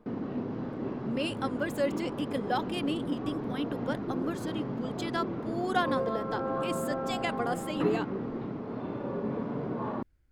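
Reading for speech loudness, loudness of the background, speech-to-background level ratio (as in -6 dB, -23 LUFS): -34.5 LUFS, -35.0 LUFS, 0.5 dB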